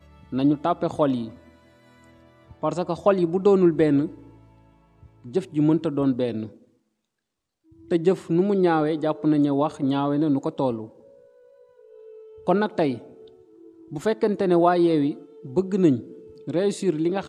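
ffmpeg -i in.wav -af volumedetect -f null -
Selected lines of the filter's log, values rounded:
mean_volume: -23.9 dB
max_volume: -5.8 dB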